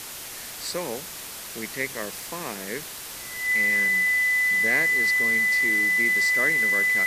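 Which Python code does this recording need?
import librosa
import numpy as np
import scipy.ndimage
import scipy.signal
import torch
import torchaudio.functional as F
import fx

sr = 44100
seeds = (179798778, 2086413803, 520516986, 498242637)

y = fx.notch(x, sr, hz=2000.0, q=30.0)
y = fx.noise_reduce(y, sr, print_start_s=1.05, print_end_s=1.55, reduce_db=30.0)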